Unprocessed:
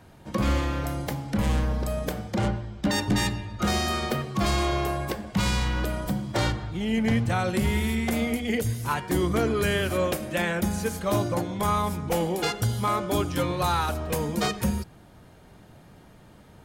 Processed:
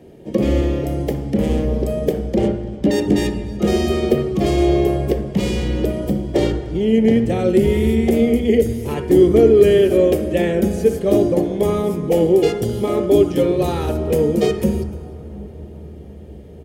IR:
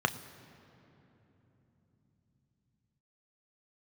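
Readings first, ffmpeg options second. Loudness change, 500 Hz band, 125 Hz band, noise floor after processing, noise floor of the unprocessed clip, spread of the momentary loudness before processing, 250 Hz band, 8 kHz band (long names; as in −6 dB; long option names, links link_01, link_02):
+9.5 dB, +14.5 dB, +5.0 dB, −36 dBFS, −51 dBFS, 5 LU, +10.5 dB, −1.0 dB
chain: -filter_complex "[0:a]equalizer=frequency=100:width_type=o:width=0.67:gain=-9,equalizer=frequency=400:width_type=o:width=0.67:gain=10,equalizer=frequency=1000:width_type=o:width=0.67:gain=-4,aecho=1:1:298:0.0708,asplit=2[link_01][link_02];[1:a]atrim=start_sample=2205,asetrate=22932,aresample=44100,lowshelf=frequency=450:gain=7[link_03];[link_02][link_03]afir=irnorm=-1:irlink=0,volume=-15.5dB[link_04];[link_01][link_04]amix=inputs=2:normalize=0"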